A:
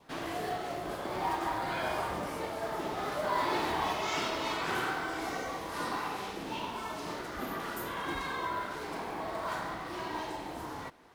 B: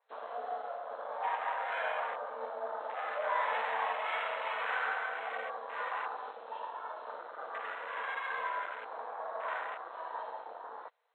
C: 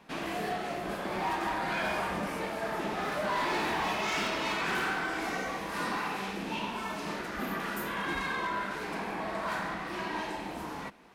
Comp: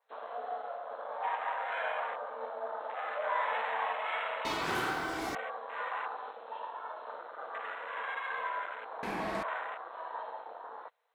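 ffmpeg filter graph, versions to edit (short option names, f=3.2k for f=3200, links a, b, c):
-filter_complex "[1:a]asplit=3[a][b][c];[a]atrim=end=4.452[d];[0:a]atrim=start=4.448:end=5.352[e];[b]atrim=start=5.348:end=9.032[f];[2:a]atrim=start=9.028:end=9.432[g];[c]atrim=start=9.428[h];[d][e]acrossfade=d=0.004:c1=hsin:c2=hsin[i];[i][f]acrossfade=d=0.004:c1=hsin:c2=hsin[j];[j][g]acrossfade=d=0.004:c1=hsin:c2=hsin[k];[k][h]acrossfade=d=0.004:c1=hsin:c2=hsin"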